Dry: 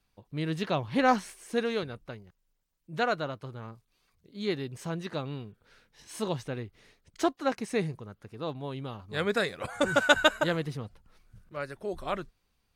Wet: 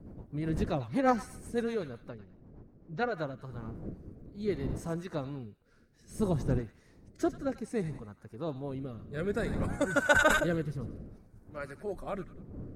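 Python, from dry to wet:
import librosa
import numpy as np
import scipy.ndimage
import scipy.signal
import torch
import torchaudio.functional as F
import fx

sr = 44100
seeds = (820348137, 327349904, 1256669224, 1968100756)

y = fx.spec_quant(x, sr, step_db=15)
y = fx.dmg_wind(y, sr, seeds[0], corner_hz=240.0, level_db=-42.0)
y = fx.cheby2_lowpass(y, sr, hz=10000.0, order=4, stop_db=40, at=(2.09, 3.14))
y = fx.low_shelf(y, sr, hz=330.0, db=9.5, at=(6.19, 6.59))
y = fx.echo_wet_highpass(y, sr, ms=94, feedback_pct=36, hz=1400.0, wet_db=-10)
y = fx.rotary_switch(y, sr, hz=8.0, then_hz=0.6, switch_at_s=2.71)
y = fx.peak_eq(y, sr, hz=3200.0, db=-11.5, octaves=1.1)
y = fx.sustainer(y, sr, db_per_s=55.0, at=(10.14, 10.58), fade=0.02)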